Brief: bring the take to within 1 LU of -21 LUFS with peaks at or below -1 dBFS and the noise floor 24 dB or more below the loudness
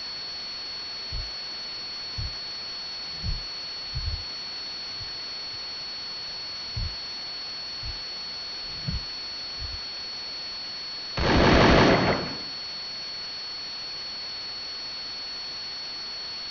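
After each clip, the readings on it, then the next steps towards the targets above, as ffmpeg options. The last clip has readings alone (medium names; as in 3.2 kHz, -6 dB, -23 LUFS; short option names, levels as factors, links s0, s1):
steady tone 4.4 kHz; tone level -33 dBFS; noise floor -35 dBFS; noise floor target -53 dBFS; loudness -28.5 LUFS; peak level -8.0 dBFS; loudness target -21.0 LUFS
-> -af "bandreject=f=4400:w=30"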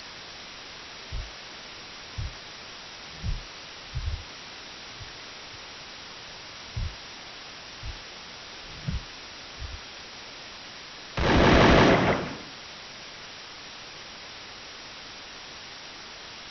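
steady tone not found; noise floor -43 dBFS; noise floor target -55 dBFS
-> -af "afftdn=nr=12:nf=-43"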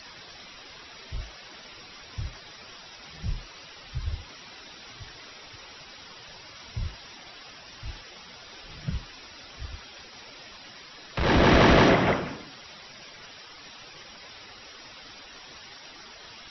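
noise floor -47 dBFS; noise floor target -50 dBFS
-> -af "afftdn=nr=6:nf=-47"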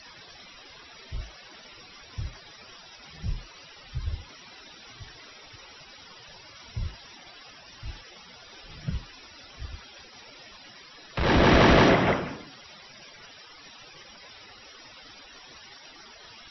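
noise floor -50 dBFS; loudness -25.5 LUFS; peak level -8.0 dBFS; loudness target -21.0 LUFS
-> -af "volume=1.68"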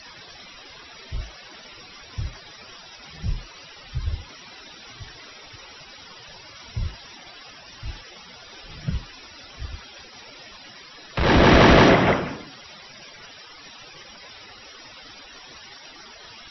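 loudness -21.0 LUFS; peak level -3.5 dBFS; noise floor -45 dBFS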